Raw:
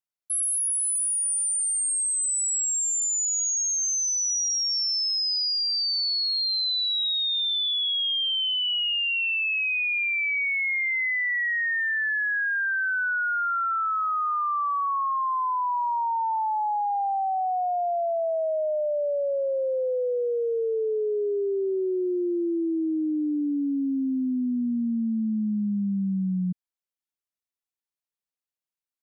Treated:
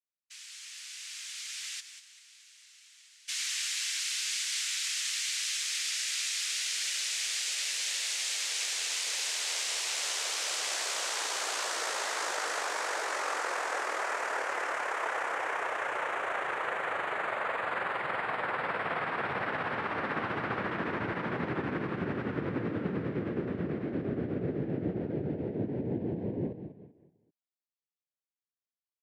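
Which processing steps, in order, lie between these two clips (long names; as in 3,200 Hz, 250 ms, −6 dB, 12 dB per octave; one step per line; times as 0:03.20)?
0:01.79–0:03.27: low-pass filter 3,400 Hz → 1,800 Hz 12 dB per octave
on a send: repeating echo 194 ms, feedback 36%, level −10.5 dB
on the sum: cochlear-implant simulation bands 3
level −8 dB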